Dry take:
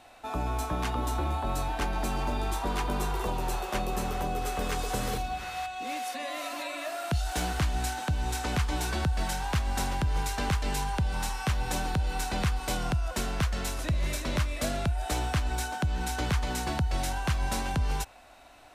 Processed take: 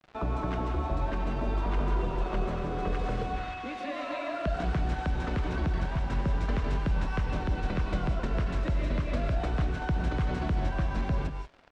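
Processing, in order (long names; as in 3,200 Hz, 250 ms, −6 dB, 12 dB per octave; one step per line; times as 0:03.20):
parametric band 810 Hz −11 dB 0.22 octaves
in parallel at +0.5 dB: brickwall limiter −26.5 dBFS, peak gain reduction 9 dB
on the sum: downward compressor 2 to 1, threshold −27 dBFS, peak gain reduction 4.5 dB
tempo change 1.6×
bit reduction 7 bits
head-to-tape spacing loss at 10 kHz 33 dB
on a send at −3.5 dB: convolution reverb, pre-delay 3 ms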